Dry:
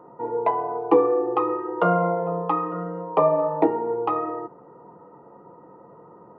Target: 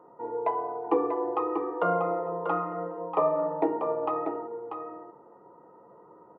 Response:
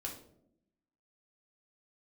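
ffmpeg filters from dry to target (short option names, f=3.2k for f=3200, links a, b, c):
-filter_complex "[0:a]bass=f=250:g=-7,treble=f=4k:g=-2,aecho=1:1:640:0.447,asplit=2[a][b];[1:a]atrim=start_sample=2205,lowpass=2.8k[c];[b][c]afir=irnorm=-1:irlink=0,volume=-9dB[d];[a][d]amix=inputs=2:normalize=0,volume=-7.5dB"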